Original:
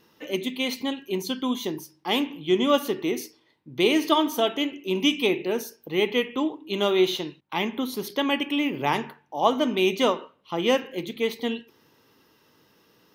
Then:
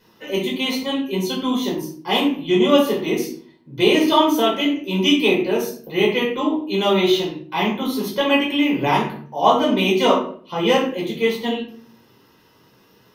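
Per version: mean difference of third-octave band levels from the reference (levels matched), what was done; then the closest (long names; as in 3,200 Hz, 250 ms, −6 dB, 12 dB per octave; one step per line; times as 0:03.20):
5.0 dB: rectangular room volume 410 cubic metres, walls furnished, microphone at 4.9 metres
level −2 dB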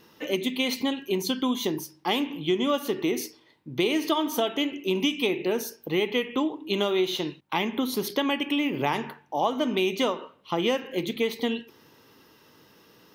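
3.0 dB: downward compressor 4 to 1, threshold −27 dBFS, peak gain reduction 11 dB
level +4.5 dB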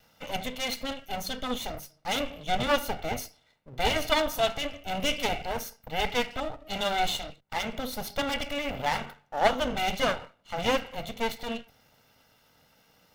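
8.5 dB: lower of the sound and its delayed copy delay 1.4 ms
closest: second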